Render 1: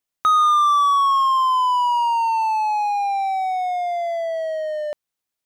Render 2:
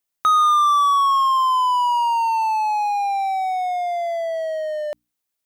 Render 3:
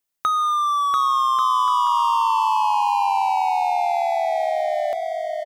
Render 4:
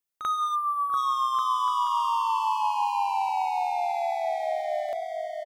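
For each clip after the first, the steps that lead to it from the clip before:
treble shelf 8.6 kHz +6 dB; hum notches 60/120/180/240/300 Hz
compression, threshold -18 dBFS, peak gain reduction 5.5 dB; on a send: bouncing-ball echo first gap 690 ms, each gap 0.65×, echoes 5
time-frequency box 0.55–0.97 s, 1.7–8.7 kHz -29 dB; reverse echo 41 ms -10.5 dB; trim -7 dB

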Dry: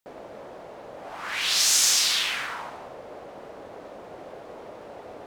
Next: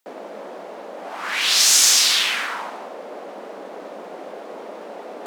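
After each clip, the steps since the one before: reverse; upward compressor, threshold -38 dBFS; reverse; steep high-pass 180 Hz 96 dB/octave; trim +6 dB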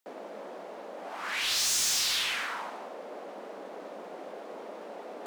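saturation -17.5 dBFS, distortion -8 dB; trim -7 dB

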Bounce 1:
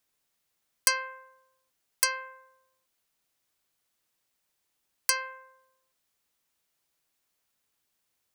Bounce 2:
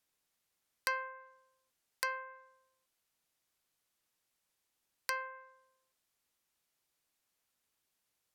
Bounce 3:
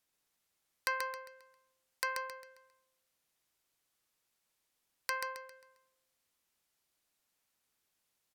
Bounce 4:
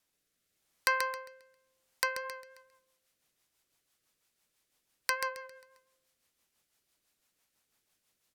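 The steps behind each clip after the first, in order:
low-pass that closes with the level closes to 1.7 kHz, closed at -31 dBFS; trim -3.5 dB
feedback delay 134 ms, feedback 37%, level -5 dB
rotary cabinet horn 0.85 Hz, later 6 Hz, at 1.79 s; trim +6.5 dB

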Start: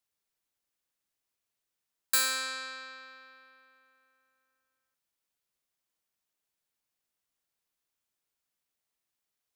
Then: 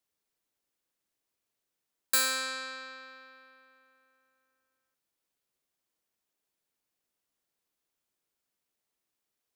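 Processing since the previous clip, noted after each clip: peaking EQ 350 Hz +5.5 dB 1.9 oct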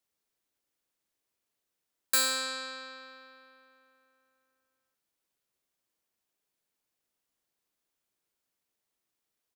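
doubling 38 ms -12 dB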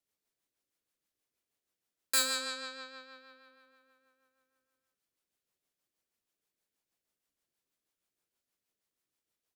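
rotary cabinet horn 6.3 Hz

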